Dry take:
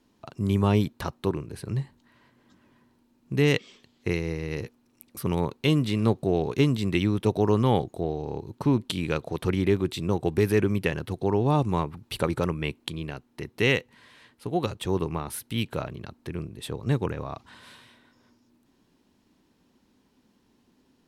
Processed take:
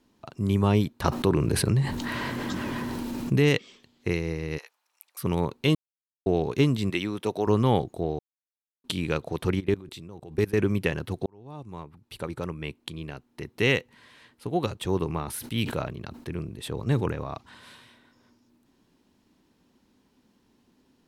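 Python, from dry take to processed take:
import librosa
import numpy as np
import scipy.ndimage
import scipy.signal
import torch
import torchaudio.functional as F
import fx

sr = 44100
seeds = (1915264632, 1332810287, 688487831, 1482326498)

y = fx.env_flatten(x, sr, amount_pct=70, at=(1.04, 3.49))
y = fx.highpass(y, sr, hz=770.0, slope=24, at=(4.57, 5.21), fade=0.02)
y = fx.highpass(y, sr, hz=430.0, slope=6, at=(6.9, 7.47))
y = fx.level_steps(y, sr, step_db=21, at=(9.59, 10.58), fade=0.02)
y = fx.sustainer(y, sr, db_per_s=75.0, at=(15.08, 17.36), fade=0.02)
y = fx.edit(y, sr, fx.silence(start_s=5.75, length_s=0.51),
    fx.silence(start_s=8.19, length_s=0.65),
    fx.fade_in_span(start_s=11.26, length_s=2.5), tone=tone)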